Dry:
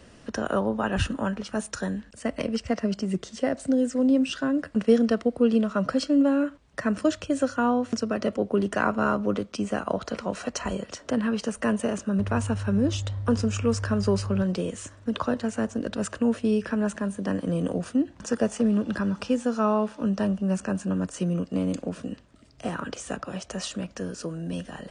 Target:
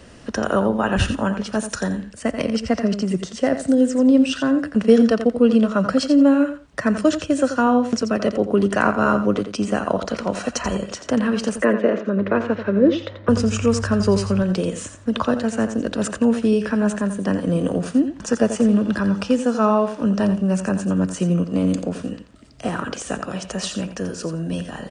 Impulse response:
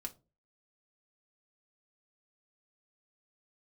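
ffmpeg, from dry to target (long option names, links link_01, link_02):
-filter_complex "[0:a]asettb=1/sr,asplit=3[link_01][link_02][link_03];[link_01]atrim=end=11.624[link_04];[link_02]atrim=start=11.62:end=13.29,asetpts=PTS-STARTPTS,afade=type=in:duration=0.004:curve=qsin,afade=type=out:start_time=1.666:duration=0.004:curve=qsin,highpass=220,equalizer=frequency=340:width_type=q:width=4:gain=8,equalizer=frequency=530:width_type=q:width=4:gain=9,equalizer=frequency=800:width_type=q:width=4:gain=-6,equalizer=frequency=2000:width_type=q:width=4:gain=5,equalizer=frequency=2900:width_type=q:width=4:gain=-5,lowpass=frequency=3700:width=0.5412,lowpass=frequency=3700:width=1.3066[link_05];[link_03]atrim=start=13.286[link_06];[link_04][link_05]acrossfade=duration=0.004:curve1=hsin:curve2=qsin[link_07];[link_07][link_06]acrossfade=duration=0.004:curve1=qsin:curve2=hsin,aecho=1:1:86|172:0.316|0.0474,volume=6dB"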